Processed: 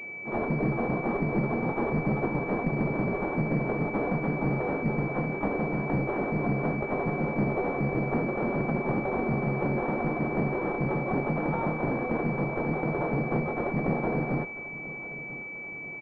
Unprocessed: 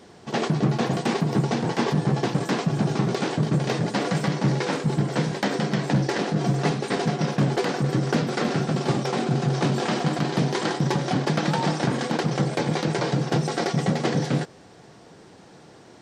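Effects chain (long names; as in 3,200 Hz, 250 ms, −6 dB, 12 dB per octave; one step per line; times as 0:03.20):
variable-slope delta modulation 16 kbit/s
low-shelf EQ 100 Hz −11 dB
asymmetric clip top −30 dBFS, bottom −19 dBFS
pitch-shifted copies added +7 semitones −5 dB
repeating echo 990 ms, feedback 46%, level −17 dB
switching amplifier with a slow clock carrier 2,300 Hz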